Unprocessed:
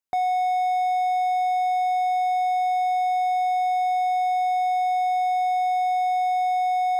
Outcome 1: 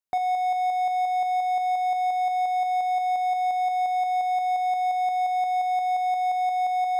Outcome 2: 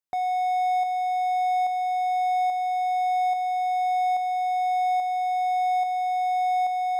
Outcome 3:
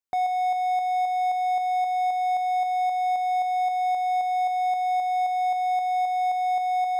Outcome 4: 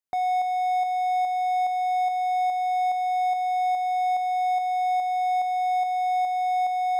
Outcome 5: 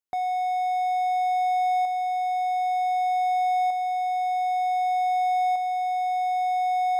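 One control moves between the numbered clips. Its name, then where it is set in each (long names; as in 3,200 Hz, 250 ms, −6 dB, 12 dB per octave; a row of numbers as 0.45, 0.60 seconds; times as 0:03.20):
shaped tremolo, speed: 5.7, 1.2, 3.8, 2.4, 0.54 Hertz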